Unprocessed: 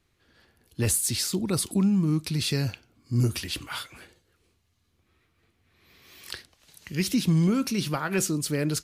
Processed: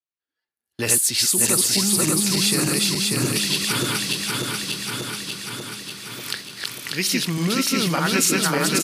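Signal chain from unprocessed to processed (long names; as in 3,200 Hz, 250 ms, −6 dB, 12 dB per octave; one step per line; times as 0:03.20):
feedback delay that plays each chunk backwards 295 ms, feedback 79%, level −1 dB
high-pass filter 700 Hz 6 dB per octave
noise gate −50 dBFS, range −29 dB
noise reduction from a noise print of the clip's start 9 dB
in parallel at −2 dB: downward compressor, threshold −35 dBFS, peak gain reduction 13.5 dB
on the sum: repeating echo 809 ms, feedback 54%, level −16 dB
level +5.5 dB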